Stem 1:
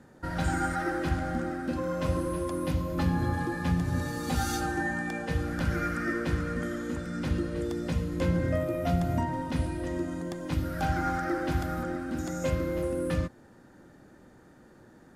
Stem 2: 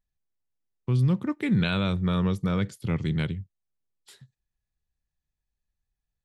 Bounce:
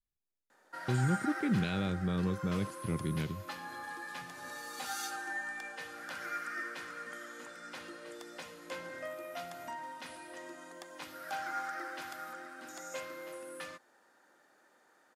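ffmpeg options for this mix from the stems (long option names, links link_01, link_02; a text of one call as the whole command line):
ffmpeg -i stem1.wav -i stem2.wav -filter_complex "[0:a]highpass=750,adelay=500,volume=-4dB[link_01];[1:a]equalizer=frequency=360:width_type=o:width=1.7:gain=8.5,volume=-10.5dB[link_02];[link_01][link_02]amix=inputs=2:normalize=0,adynamicequalizer=threshold=0.00398:dfrequency=580:dqfactor=0.81:tfrequency=580:tqfactor=0.81:attack=5:release=100:ratio=0.375:range=2:mode=cutabove:tftype=bell" out.wav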